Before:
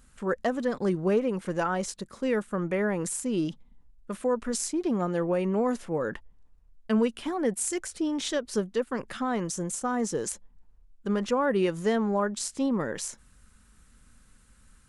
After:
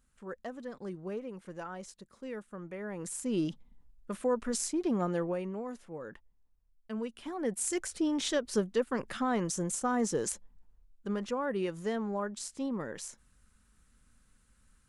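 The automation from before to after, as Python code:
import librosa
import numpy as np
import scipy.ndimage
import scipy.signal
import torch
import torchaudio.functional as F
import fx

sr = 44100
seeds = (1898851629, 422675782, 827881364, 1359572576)

y = fx.gain(x, sr, db=fx.line((2.8, -14.0), (3.32, -3.0), (5.13, -3.0), (5.63, -13.5), (6.95, -13.5), (7.78, -1.5), (10.29, -1.5), (11.36, -8.0)))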